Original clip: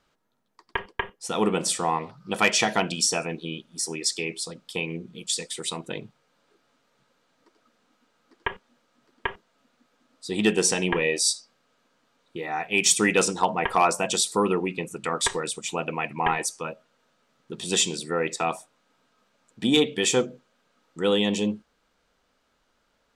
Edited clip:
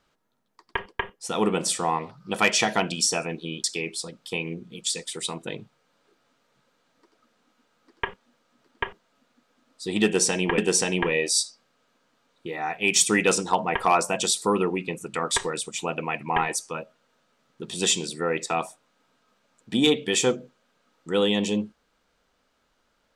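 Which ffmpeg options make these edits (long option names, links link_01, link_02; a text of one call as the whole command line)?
ffmpeg -i in.wav -filter_complex "[0:a]asplit=3[link_01][link_02][link_03];[link_01]atrim=end=3.642[link_04];[link_02]atrim=start=4.068:end=11.012[link_05];[link_03]atrim=start=10.478[link_06];[link_04][link_05]acrossfade=duration=0.004:curve1=hsin:curve2=hsin[link_07];[link_07][link_06]acrossfade=duration=0.004:curve1=hsin:curve2=hsin" out.wav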